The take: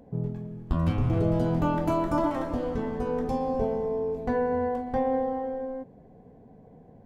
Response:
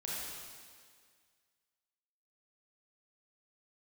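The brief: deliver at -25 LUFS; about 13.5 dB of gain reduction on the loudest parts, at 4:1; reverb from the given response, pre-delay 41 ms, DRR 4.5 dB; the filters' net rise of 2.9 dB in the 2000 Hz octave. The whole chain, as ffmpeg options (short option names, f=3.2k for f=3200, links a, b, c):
-filter_complex "[0:a]equalizer=f=2k:t=o:g=4,acompressor=threshold=-37dB:ratio=4,asplit=2[a][b];[1:a]atrim=start_sample=2205,adelay=41[c];[b][c]afir=irnorm=-1:irlink=0,volume=-6.5dB[d];[a][d]amix=inputs=2:normalize=0,volume=12.5dB"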